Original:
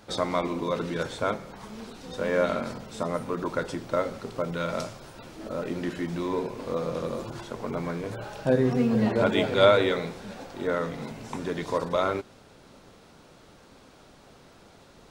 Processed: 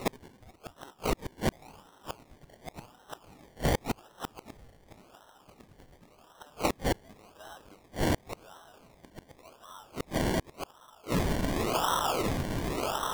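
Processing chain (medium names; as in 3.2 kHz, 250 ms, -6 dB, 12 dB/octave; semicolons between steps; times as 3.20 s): gliding tape speed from 148% -> 82%; in parallel at +0.5 dB: compression 5:1, threshold -33 dBFS, peak gain reduction 17.5 dB; on the sum: sine folder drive 7 dB, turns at -3 dBFS; resonant high-pass 1.2 kHz, resonance Q 2.7; on a send: echo that smears into a reverb 1219 ms, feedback 58%, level -5.5 dB; on the sum: decimation with a swept rate 27×, swing 60% 0.9 Hz; inverted gate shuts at -12 dBFS, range -34 dB; trim -4.5 dB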